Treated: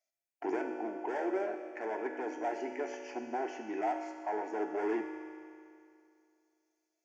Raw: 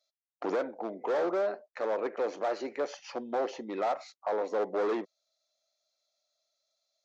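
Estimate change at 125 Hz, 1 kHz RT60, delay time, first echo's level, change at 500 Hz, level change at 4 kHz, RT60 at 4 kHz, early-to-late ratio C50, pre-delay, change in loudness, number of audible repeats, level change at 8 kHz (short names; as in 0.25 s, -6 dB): n/a, 2.4 s, none, none, -5.5 dB, -9.0 dB, 2.3 s, 4.5 dB, 3 ms, -4.0 dB, none, n/a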